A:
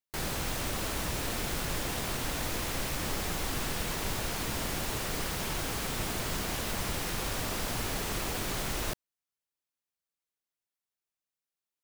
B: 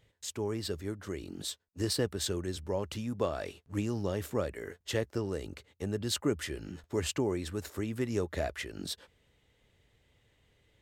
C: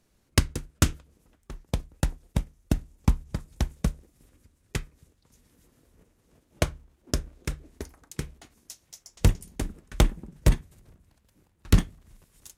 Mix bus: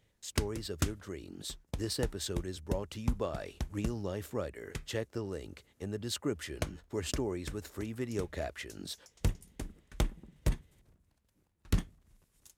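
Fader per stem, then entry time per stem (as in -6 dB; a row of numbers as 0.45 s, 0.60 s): mute, -4.0 dB, -10.5 dB; mute, 0.00 s, 0.00 s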